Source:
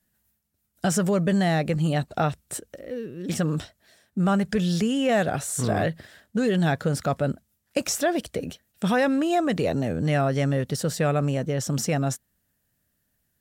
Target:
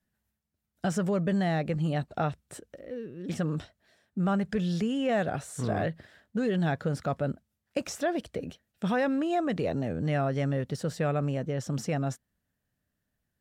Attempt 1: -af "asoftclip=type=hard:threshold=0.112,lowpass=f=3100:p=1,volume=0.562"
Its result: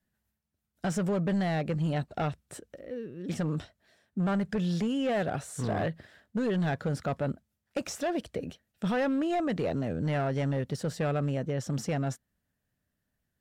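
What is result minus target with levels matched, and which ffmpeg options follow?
hard clipper: distortion +38 dB
-af "asoftclip=type=hard:threshold=0.251,lowpass=f=3100:p=1,volume=0.562"

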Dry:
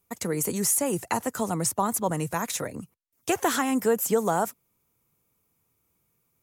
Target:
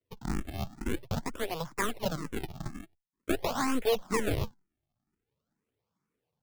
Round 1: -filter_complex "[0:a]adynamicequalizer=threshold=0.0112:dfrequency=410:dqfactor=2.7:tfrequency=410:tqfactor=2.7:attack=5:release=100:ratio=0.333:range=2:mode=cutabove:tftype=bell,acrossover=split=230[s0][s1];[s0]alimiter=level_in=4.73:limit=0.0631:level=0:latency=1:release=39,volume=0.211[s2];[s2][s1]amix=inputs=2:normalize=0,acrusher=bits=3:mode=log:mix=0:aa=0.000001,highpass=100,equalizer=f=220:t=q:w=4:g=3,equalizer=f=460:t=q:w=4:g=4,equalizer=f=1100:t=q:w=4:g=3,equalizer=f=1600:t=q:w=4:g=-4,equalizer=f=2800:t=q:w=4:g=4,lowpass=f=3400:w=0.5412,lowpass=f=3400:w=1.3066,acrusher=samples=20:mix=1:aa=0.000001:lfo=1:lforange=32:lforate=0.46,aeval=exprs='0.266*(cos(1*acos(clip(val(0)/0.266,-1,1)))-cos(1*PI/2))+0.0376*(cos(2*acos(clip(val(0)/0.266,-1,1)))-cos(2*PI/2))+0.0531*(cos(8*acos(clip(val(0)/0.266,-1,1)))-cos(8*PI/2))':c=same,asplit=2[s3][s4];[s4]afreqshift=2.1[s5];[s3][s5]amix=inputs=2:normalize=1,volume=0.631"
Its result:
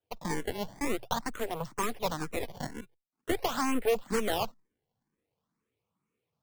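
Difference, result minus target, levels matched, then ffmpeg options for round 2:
decimation with a swept rate: distortion -8 dB
-filter_complex "[0:a]adynamicequalizer=threshold=0.0112:dfrequency=410:dqfactor=2.7:tfrequency=410:tqfactor=2.7:attack=5:release=100:ratio=0.333:range=2:mode=cutabove:tftype=bell,acrossover=split=230[s0][s1];[s0]alimiter=level_in=4.73:limit=0.0631:level=0:latency=1:release=39,volume=0.211[s2];[s2][s1]amix=inputs=2:normalize=0,acrusher=bits=3:mode=log:mix=0:aa=0.000001,highpass=100,equalizer=f=220:t=q:w=4:g=3,equalizer=f=460:t=q:w=4:g=4,equalizer=f=1100:t=q:w=4:g=3,equalizer=f=1600:t=q:w=4:g=-4,equalizer=f=2800:t=q:w=4:g=4,lowpass=f=3400:w=0.5412,lowpass=f=3400:w=1.3066,acrusher=samples=51:mix=1:aa=0.000001:lfo=1:lforange=81.6:lforate=0.46,aeval=exprs='0.266*(cos(1*acos(clip(val(0)/0.266,-1,1)))-cos(1*PI/2))+0.0376*(cos(2*acos(clip(val(0)/0.266,-1,1)))-cos(2*PI/2))+0.0531*(cos(8*acos(clip(val(0)/0.266,-1,1)))-cos(8*PI/2))':c=same,asplit=2[s3][s4];[s4]afreqshift=2.1[s5];[s3][s5]amix=inputs=2:normalize=1,volume=0.631"

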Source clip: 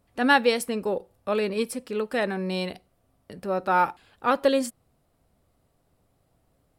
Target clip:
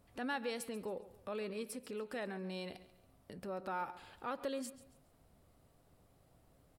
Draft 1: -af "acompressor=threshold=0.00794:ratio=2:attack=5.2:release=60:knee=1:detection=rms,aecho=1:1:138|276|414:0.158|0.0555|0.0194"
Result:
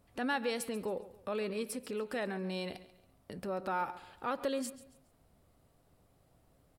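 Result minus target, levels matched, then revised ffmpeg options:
compression: peak gain reduction -5.5 dB
-af "acompressor=threshold=0.00237:ratio=2:attack=5.2:release=60:knee=1:detection=rms,aecho=1:1:138|276|414:0.158|0.0555|0.0194"

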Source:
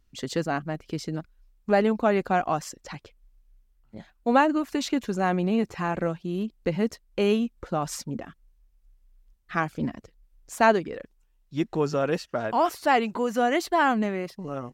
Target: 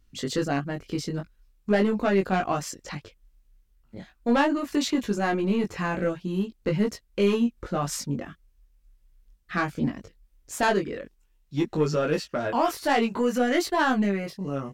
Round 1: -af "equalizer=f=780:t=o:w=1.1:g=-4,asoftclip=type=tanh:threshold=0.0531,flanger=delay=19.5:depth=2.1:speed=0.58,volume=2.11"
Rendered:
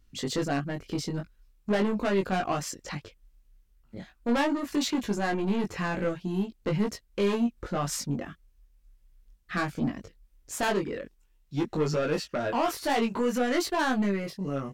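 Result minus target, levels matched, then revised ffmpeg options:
saturation: distortion +6 dB
-af "equalizer=f=780:t=o:w=1.1:g=-4,asoftclip=type=tanh:threshold=0.119,flanger=delay=19.5:depth=2.1:speed=0.58,volume=2.11"

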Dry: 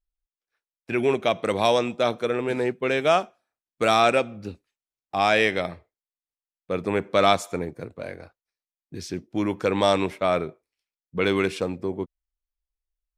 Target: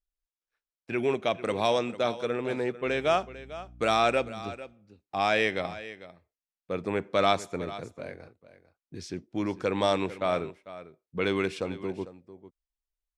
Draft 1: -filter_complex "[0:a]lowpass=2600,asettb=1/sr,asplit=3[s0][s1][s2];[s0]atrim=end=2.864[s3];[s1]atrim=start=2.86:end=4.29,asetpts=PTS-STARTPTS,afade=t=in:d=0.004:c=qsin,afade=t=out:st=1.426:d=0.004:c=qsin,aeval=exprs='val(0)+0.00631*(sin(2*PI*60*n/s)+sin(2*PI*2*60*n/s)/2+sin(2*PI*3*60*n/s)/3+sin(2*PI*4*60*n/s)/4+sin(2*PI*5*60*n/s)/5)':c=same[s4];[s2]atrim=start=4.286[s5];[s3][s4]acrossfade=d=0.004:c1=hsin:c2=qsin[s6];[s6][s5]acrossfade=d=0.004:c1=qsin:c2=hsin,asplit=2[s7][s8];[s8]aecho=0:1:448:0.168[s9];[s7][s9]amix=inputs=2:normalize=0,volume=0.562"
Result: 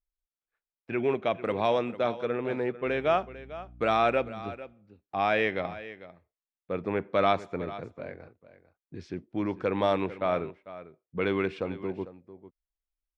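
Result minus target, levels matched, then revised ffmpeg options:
8 kHz band -15.5 dB
-filter_complex "[0:a]lowpass=9100,asettb=1/sr,asplit=3[s0][s1][s2];[s0]atrim=end=2.864[s3];[s1]atrim=start=2.86:end=4.29,asetpts=PTS-STARTPTS,afade=t=in:d=0.004:c=qsin,afade=t=out:st=1.426:d=0.004:c=qsin,aeval=exprs='val(0)+0.00631*(sin(2*PI*60*n/s)+sin(2*PI*2*60*n/s)/2+sin(2*PI*3*60*n/s)/3+sin(2*PI*4*60*n/s)/4+sin(2*PI*5*60*n/s)/5)':c=same[s4];[s2]atrim=start=4.286[s5];[s3][s4]acrossfade=d=0.004:c1=hsin:c2=qsin[s6];[s6][s5]acrossfade=d=0.004:c1=qsin:c2=hsin,asplit=2[s7][s8];[s8]aecho=0:1:448:0.168[s9];[s7][s9]amix=inputs=2:normalize=0,volume=0.562"

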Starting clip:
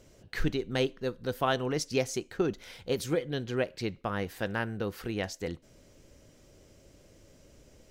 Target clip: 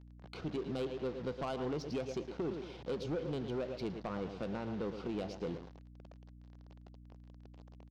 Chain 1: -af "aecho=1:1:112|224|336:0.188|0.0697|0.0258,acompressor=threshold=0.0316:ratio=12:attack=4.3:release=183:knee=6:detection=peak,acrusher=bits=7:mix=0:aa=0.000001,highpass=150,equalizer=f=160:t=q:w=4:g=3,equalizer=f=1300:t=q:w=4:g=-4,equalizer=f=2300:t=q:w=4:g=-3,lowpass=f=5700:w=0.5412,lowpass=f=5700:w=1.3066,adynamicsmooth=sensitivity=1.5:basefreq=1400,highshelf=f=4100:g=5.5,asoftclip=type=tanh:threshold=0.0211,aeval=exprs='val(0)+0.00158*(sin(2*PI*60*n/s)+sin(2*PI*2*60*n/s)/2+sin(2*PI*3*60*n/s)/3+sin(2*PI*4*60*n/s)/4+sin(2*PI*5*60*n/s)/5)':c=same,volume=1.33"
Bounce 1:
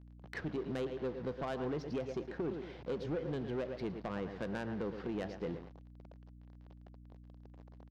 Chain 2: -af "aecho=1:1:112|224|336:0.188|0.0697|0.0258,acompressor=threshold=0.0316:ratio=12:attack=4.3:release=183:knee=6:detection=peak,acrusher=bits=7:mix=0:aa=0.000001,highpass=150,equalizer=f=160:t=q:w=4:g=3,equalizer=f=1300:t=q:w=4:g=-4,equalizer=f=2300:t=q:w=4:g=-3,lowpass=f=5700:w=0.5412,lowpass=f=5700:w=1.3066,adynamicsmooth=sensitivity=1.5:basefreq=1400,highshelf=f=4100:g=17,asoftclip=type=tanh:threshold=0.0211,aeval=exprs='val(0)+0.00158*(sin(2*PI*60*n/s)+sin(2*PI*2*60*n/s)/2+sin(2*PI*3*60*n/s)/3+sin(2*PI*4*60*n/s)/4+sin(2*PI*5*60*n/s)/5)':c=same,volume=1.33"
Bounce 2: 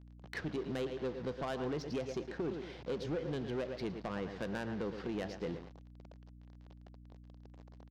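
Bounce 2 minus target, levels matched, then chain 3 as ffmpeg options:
2 kHz band +5.5 dB
-af "aecho=1:1:112|224|336:0.188|0.0697|0.0258,acompressor=threshold=0.0316:ratio=12:attack=4.3:release=183:knee=6:detection=peak,asuperstop=centerf=1800:order=8:qfactor=2.6,acrusher=bits=7:mix=0:aa=0.000001,highpass=150,equalizer=f=160:t=q:w=4:g=3,equalizer=f=1300:t=q:w=4:g=-4,equalizer=f=2300:t=q:w=4:g=-3,lowpass=f=5700:w=0.5412,lowpass=f=5700:w=1.3066,adynamicsmooth=sensitivity=1.5:basefreq=1400,highshelf=f=4100:g=17,asoftclip=type=tanh:threshold=0.0211,aeval=exprs='val(0)+0.00158*(sin(2*PI*60*n/s)+sin(2*PI*2*60*n/s)/2+sin(2*PI*3*60*n/s)/3+sin(2*PI*4*60*n/s)/4+sin(2*PI*5*60*n/s)/5)':c=same,volume=1.33"

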